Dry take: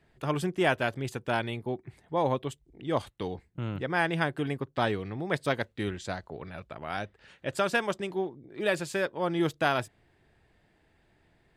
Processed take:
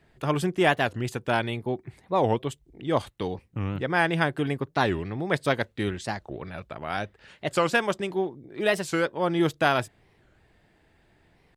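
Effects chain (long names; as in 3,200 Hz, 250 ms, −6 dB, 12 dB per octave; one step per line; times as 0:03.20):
wow of a warped record 45 rpm, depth 250 cents
level +4 dB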